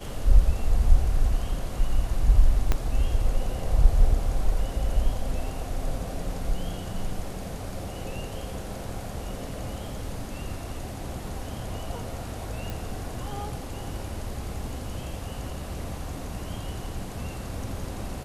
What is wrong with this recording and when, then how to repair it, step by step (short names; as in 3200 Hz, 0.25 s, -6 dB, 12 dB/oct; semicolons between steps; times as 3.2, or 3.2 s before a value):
2.72 pop -10 dBFS
12.7 pop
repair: de-click